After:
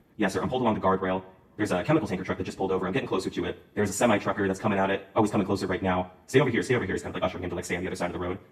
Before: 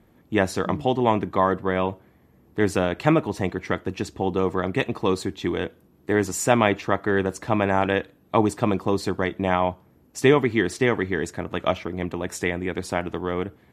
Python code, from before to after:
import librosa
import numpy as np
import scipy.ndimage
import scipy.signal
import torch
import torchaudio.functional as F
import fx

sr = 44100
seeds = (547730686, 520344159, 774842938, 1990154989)

y = fx.stretch_vocoder_free(x, sr, factor=0.62)
y = fx.rev_double_slope(y, sr, seeds[0], early_s=0.55, late_s=3.4, knee_db=-26, drr_db=14.0)